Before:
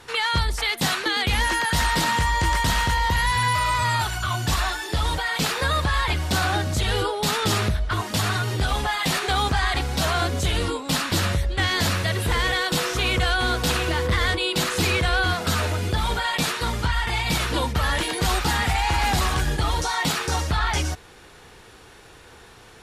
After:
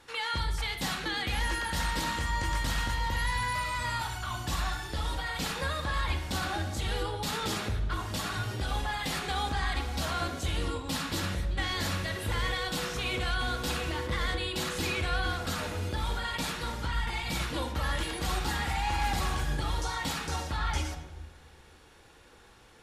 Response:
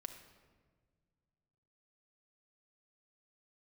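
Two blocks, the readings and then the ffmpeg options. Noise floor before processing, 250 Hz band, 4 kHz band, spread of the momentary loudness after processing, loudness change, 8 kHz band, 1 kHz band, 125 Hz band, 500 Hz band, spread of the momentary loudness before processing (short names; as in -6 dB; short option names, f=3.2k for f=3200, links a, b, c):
-47 dBFS, -8.5 dB, -9.5 dB, 3 LU, -9.0 dB, -10.0 dB, -9.5 dB, -9.0 dB, -9.5 dB, 3 LU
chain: -filter_complex "[1:a]atrim=start_sample=2205,asetrate=61740,aresample=44100[a];[0:a][a]afir=irnorm=-1:irlink=0,volume=-2.5dB"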